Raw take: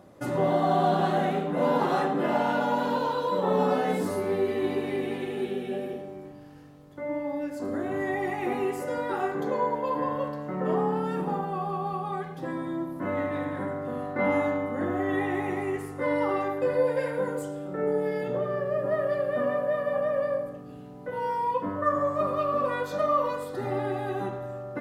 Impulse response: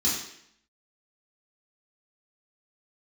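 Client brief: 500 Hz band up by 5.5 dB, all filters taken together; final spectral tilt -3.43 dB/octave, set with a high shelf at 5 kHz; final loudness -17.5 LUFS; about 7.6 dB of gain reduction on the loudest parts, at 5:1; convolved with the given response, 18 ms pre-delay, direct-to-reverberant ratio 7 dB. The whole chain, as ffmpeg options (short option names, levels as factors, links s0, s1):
-filter_complex "[0:a]equalizer=f=500:t=o:g=6.5,highshelf=f=5000:g=4,acompressor=threshold=0.0708:ratio=5,asplit=2[s0][s1];[1:a]atrim=start_sample=2205,adelay=18[s2];[s1][s2]afir=irnorm=-1:irlink=0,volume=0.15[s3];[s0][s3]amix=inputs=2:normalize=0,volume=2.82"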